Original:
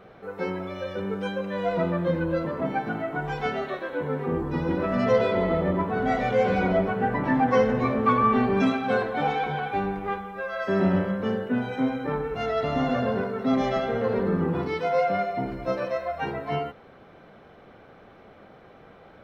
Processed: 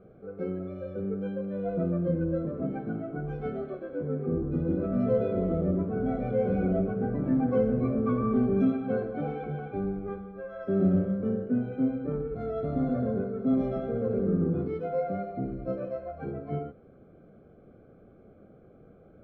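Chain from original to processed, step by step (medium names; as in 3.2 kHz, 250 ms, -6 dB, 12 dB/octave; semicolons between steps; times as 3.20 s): boxcar filter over 47 samples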